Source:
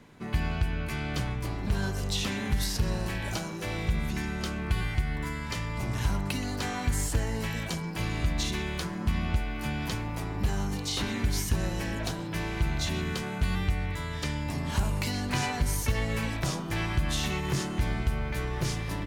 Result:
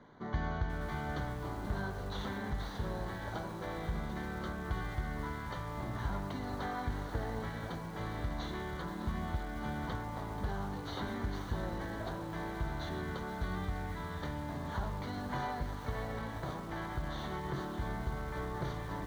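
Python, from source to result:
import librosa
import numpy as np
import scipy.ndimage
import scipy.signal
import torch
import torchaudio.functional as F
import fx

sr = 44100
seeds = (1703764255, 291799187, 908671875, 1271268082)

p1 = fx.cvsd(x, sr, bps=32000)
p2 = fx.low_shelf(p1, sr, hz=430.0, db=-11.5)
p3 = fx.rider(p2, sr, range_db=10, speed_s=2.0)
p4 = scipy.signal.lfilter(np.full(17, 1.0 / 17), 1.0, p3)
p5 = p4 + fx.echo_single(p4, sr, ms=602, db=-12.0, dry=0)
p6 = fx.echo_crushed(p5, sr, ms=483, feedback_pct=55, bits=8, wet_db=-11.5)
y = p6 * 10.0 ** (1.0 / 20.0)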